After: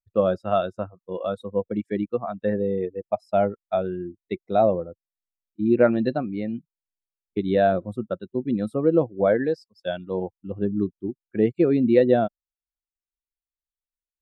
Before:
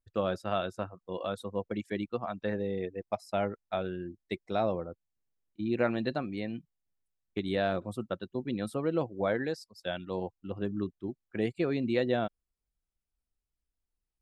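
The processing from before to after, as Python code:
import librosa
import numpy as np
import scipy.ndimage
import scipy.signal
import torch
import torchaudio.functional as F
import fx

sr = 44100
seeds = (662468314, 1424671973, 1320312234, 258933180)

y = fx.spectral_expand(x, sr, expansion=1.5)
y = y * 10.0 ** (9.0 / 20.0)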